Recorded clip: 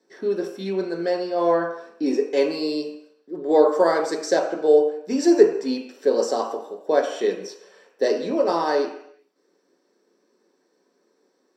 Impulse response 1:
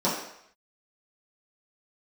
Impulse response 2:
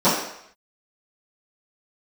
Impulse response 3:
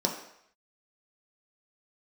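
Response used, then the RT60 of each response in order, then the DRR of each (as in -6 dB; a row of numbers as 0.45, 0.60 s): 3; 0.70, 0.70, 0.70 s; -10.0, -16.5, 0.0 dB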